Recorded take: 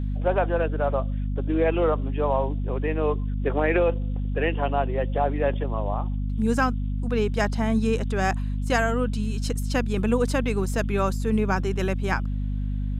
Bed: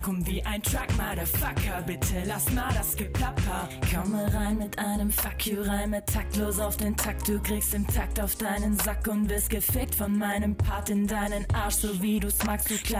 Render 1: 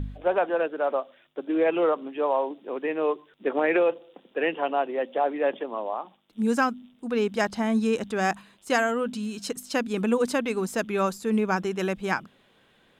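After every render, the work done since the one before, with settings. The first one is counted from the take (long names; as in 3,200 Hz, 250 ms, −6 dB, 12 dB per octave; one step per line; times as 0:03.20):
hum removal 50 Hz, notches 5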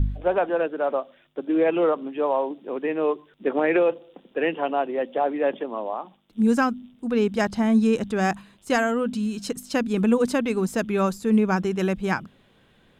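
low-shelf EQ 210 Hz +11.5 dB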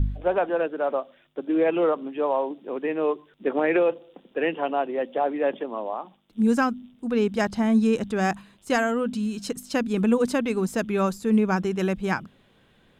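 level −1 dB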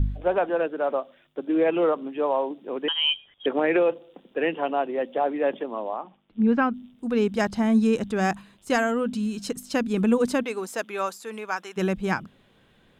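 0:02.88–0:03.46: voice inversion scrambler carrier 3,500 Hz
0:05.96–0:06.74: low-pass filter 3,100 Hz 24 dB per octave
0:10.42–0:11.76: high-pass filter 400 Hz → 950 Hz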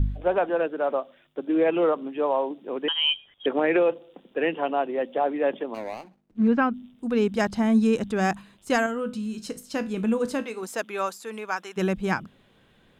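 0:05.74–0:06.48: running median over 41 samples
0:08.86–0:10.63: tuned comb filter 55 Hz, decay 0.3 s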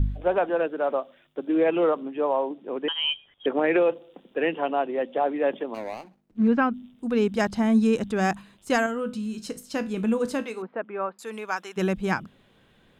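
0:02.02–0:03.64: high-shelf EQ 4,400 Hz −9.5 dB
0:04.58–0:05.41: low-pass filter 5,200 Hz → 9,600 Hz
0:10.62–0:11.19: Gaussian smoothing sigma 4.5 samples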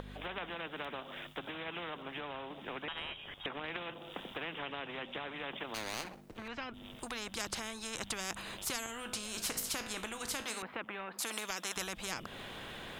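downward compressor 6 to 1, threshold −32 dBFS, peak gain reduction 15 dB
every bin compressed towards the loudest bin 4 to 1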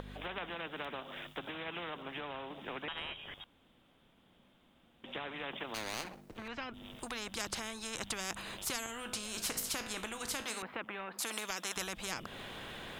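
0:03.44–0:05.04: fill with room tone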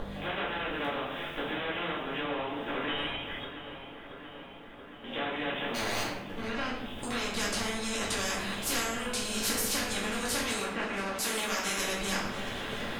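feedback echo with a low-pass in the loop 679 ms, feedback 74%, low-pass 4,500 Hz, level −12 dB
rectangular room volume 190 cubic metres, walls mixed, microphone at 2.3 metres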